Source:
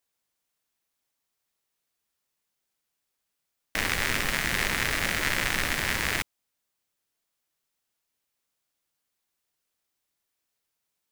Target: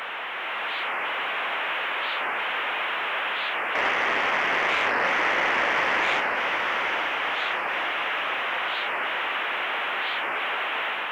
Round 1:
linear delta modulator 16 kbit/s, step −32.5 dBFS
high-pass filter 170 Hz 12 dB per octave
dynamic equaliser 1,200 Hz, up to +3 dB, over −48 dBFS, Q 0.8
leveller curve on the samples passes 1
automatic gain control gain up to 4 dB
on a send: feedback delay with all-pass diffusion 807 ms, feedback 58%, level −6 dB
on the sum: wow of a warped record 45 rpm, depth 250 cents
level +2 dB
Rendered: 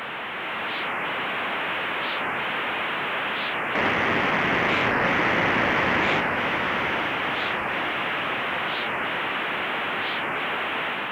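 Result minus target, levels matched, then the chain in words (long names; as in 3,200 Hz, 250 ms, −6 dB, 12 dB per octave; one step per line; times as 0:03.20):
125 Hz band +16.0 dB
linear delta modulator 16 kbit/s, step −32.5 dBFS
high-pass filter 520 Hz 12 dB per octave
dynamic equaliser 1,200 Hz, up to +3 dB, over −48 dBFS, Q 0.8
leveller curve on the samples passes 1
automatic gain control gain up to 4 dB
on a send: feedback delay with all-pass diffusion 807 ms, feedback 58%, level −6 dB
on the sum: wow of a warped record 45 rpm, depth 250 cents
level +2 dB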